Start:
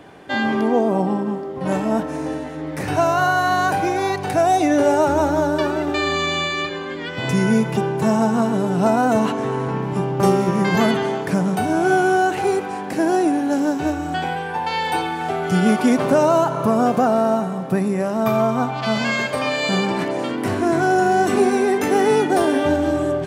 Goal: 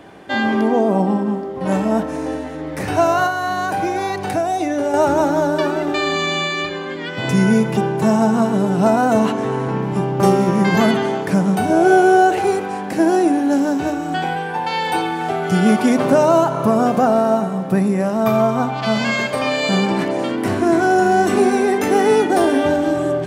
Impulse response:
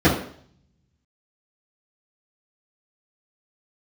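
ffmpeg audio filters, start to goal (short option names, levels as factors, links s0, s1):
-filter_complex "[0:a]asettb=1/sr,asplit=3[s0][s1][s2];[s0]atrim=end=3.264[s3];[s1]atrim=start=3.26:end=4.94,asetpts=PTS-STARTPTS,afade=t=in:d=0.004:c=qsin,afade=t=out:st=1.676:d=0.004:c=qsin,acompressor=threshold=0.112:ratio=6[s4];[s2]atrim=start=4.936[s5];[s3][s4]acrossfade=d=0.004:c1=hsin:c2=qsin[s6];[s6][s5]acrossfade=d=0.004:c1=qsin:c2=hsin,asettb=1/sr,asplit=3[s7][s8][s9];[s7]atrim=end=11.704[s10];[s8]atrim=start=11.7:end=12.39,asetpts=PTS-STARTPTS,afade=t=in:d=0.004:c=qsin,afade=t=out:st=0.686:d=0.004:c=qsin,equalizer=f=250:t=o:w=1:g=-8,equalizer=f=500:t=o:w=1:g=12,equalizer=f=1000:t=o:w=1:g=-3[s11];[s9]atrim=start=12.386[s12];[s10][s11]acrossfade=d=0.004:c1=hsin:c2=qsin[s13];[s13][s12]acrossfade=d=0.004:c1=qsin:c2=hsin,asplit=2[s14][s15];[1:a]atrim=start_sample=2205[s16];[s15][s16]afir=irnorm=-1:irlink=0,volume=0.0112[s17];[s14][s17]amix=inputs=2:normalize=0,volume=1.19"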